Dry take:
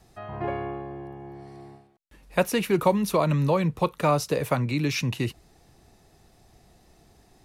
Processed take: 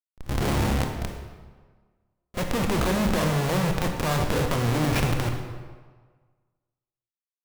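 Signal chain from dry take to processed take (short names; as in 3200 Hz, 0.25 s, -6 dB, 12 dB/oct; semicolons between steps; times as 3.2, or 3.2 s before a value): tilt -2 dB/oct; Schmitt trigger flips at -28 dBFS; transient shaper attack -3 dB, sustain +9 dB; pre-echo 30 ms -17 dB; on a send at -3 dB: reverb RT60 1.5 s, pre-delay 22 ms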